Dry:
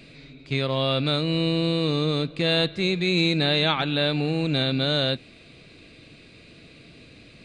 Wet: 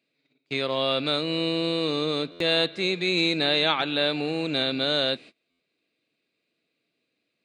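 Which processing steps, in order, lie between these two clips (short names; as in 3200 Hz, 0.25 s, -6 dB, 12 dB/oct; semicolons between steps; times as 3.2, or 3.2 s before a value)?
gate -41 dBFS, range -27 dB; HPF 280 Hz 12 dB/oct; stuck buffer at 2.31/5.5, samples 512, times 7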